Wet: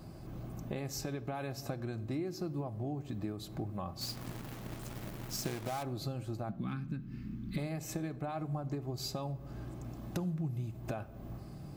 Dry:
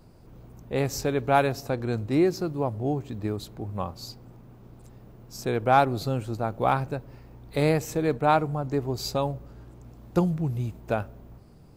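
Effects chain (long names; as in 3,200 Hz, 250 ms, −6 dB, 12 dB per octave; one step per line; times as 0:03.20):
0:06.49–0:07.58: drawn EQ curve 130 Hz 0 dB, 210 Hz +13 dB, 640 Hz −26 dB, 1,400 Hz −5 dB, 3,200 Hz −3 dB, 9,900 Hz −10 dB
brickwall limiter −18.5 dBFS, peak gain reduction 11 dB
downward compressor 12 to 1, threshold −40 dBFS, peak gain reduction 18.5 dB
notch comb filter 470 Hz
0:04.01–0:05.83: log-companded quantiser 4 bits
rectangular room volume 2,600 cubic metres, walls furnished, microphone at 0.59 metres
level +5.5 dB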